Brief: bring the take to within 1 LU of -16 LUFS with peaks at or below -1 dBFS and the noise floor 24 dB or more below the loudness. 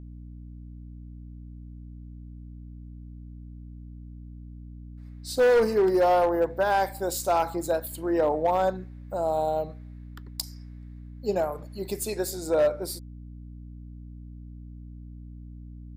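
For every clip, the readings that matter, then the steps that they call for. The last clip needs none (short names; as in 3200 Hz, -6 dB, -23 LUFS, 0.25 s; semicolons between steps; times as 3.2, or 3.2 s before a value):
clipped 1.0%; flat tops at -16.5 dBFS; hum 60 Hz; harmonics up to 300 Hz; hum level -40 dBFS; loudness -26.0 LUFS; peak -16.5 dBFS; loudness target -16.0 LUFS
-> clip repair -16.5 dBFS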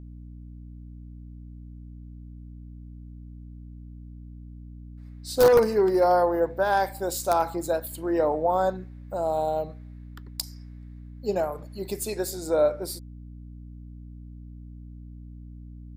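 clipped 0.0%; hum 60 Hz; harmonics up to 300 Hz; hum level -40 dBFS
-> notches 60/120/180/240/300 Hz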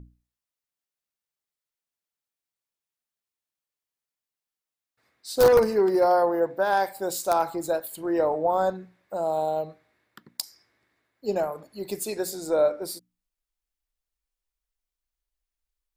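hum none; loudness -24.5 LUFS; peak -7.0 dBFS; loudness target -16.0 LUFS
-> gain +8.5 dB; limiter -1 dBFS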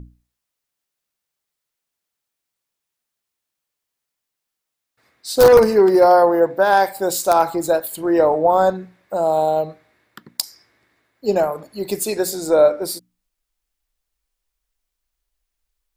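loudness -16.5 LUFS; peak -1.0 dBFS; noise floor -82 dBFS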